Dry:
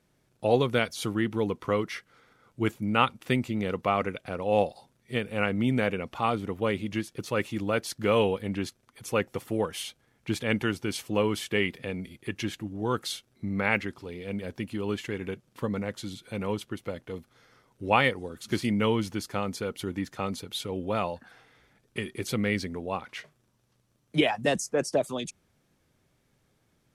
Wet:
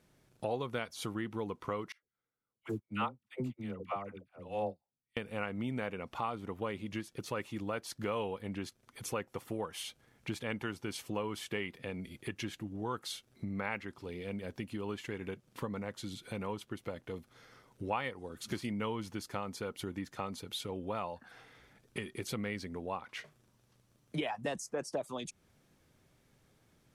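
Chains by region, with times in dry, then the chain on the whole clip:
1.92–5.17 s: bass shelf 450 Hz +5.5 dB + phase dispersion lows, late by 112 ms, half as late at 600 Hz + upward expansion 2.5:1, over -41 dBFS
whole clip: dynamic bell 990 Hz, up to +6 dB, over -43 dBFS, Q 1.4; compression 2.5:1, threshold -41 dBFS; trim +1 dB

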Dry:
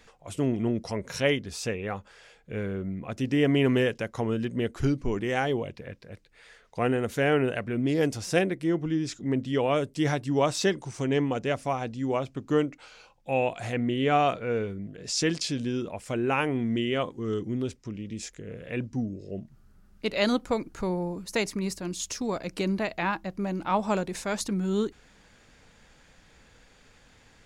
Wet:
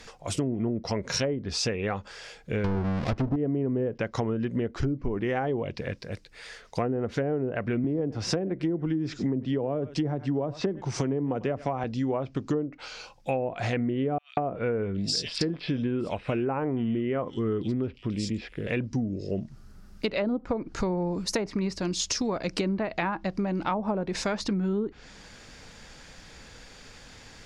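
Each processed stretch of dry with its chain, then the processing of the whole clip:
2.64–3.36 s: square wave that keeps the level + bass shelf 82 Hz +10.5 dB
7.84–11.84 s: delay 97 ms -22.5 dB + three bands compressed up and down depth 40%
14.18–18.67 s: peaking EQ 6.4 kHz -12.5 dB 0.41 oct + bands offset in time highs, lows 190 ms, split 3.1 kHz
whole clip: low-pass that closes with the level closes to 610 Hz, closed at -20.5 dBFS; peaking EQ 5.1 kHz +6.5 dB 0.63 oct; compression, threshold -33 dBFS; trim +8 dB

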